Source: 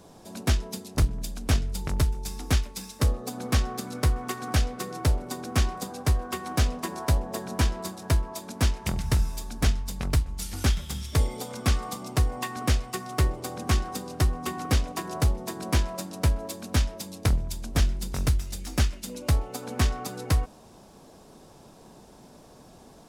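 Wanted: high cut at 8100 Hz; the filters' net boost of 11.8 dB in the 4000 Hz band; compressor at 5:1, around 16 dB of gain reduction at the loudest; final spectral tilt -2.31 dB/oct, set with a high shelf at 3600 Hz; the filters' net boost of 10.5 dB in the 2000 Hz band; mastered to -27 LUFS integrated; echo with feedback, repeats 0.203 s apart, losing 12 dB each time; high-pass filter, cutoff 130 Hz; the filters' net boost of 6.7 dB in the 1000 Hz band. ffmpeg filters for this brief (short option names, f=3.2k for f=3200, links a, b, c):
-af "highpass=130,lowpass=8.1k,equalizer=f=1k:t=o:g=5.5,equalizer=f=2k:t=o:g=7.5,highshelf=f=3.6k:g=7,equalizer=f=4k:t=o:g=8,acompressor=threshold=-36dB:ratio=5,aecho=1:1:203|406|609:0.251|0.0628|0.0157,volume=11.5dB"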